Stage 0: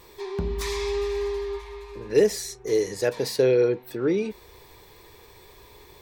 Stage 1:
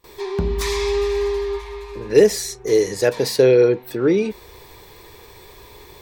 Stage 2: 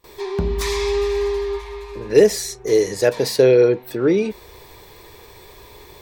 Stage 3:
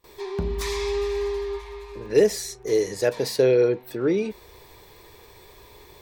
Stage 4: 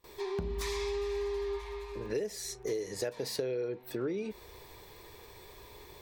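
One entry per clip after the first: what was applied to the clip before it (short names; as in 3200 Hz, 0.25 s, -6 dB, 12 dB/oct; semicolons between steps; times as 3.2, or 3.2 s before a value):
gate with hold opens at -41 dBFS; gain +6.5 dB
bell 630 Hz +3 dB 0.3 oct
crackle 15/s -41 dBFS; gain -5.5 dB
compressor 12:1, threshold -28 dBFS, peak gain reduction 16.5 dB; gain -3 dB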